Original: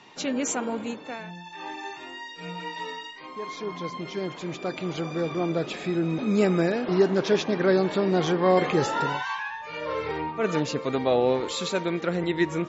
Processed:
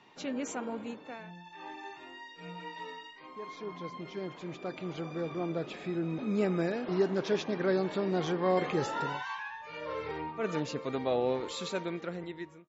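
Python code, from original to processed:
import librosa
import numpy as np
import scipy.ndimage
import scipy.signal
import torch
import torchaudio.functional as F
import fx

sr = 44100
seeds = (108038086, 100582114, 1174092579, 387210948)

y = fx.fade_out_tail(x, sr, length_s=0.91)
y = fx.high_shelf(y, sr, hz=5100.0, db=fx.steps((0.0, -9.5), (6.59, -2.5)))
y = y * librosa.db_to_amplitude(-7.5)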